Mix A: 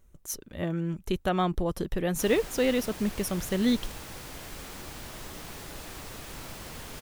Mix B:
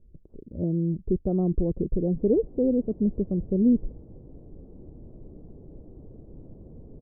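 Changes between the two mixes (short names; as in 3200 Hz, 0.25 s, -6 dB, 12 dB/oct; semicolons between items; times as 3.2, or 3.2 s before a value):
speech +5.0 dB; master: add inverse Chebyshev low-pass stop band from 2700 Hz, stop band 80 dB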